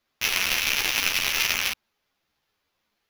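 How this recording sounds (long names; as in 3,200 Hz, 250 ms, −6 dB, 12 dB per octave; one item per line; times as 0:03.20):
aliases and images of a low sample rate 8,500 Hz, jitter 0%
a shimmering, thickened sound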